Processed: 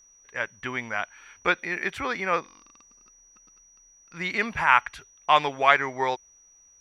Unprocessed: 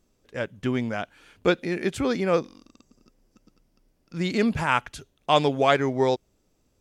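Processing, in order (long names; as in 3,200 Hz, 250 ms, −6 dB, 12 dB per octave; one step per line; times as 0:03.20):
octave-band graphic EQ 125/250/500/1,000/2,000/8,000 Hz −7/−7/−4/+8/+11/−8 dB
steady tone 5,800 Hz −50 dBFS
level −4 dB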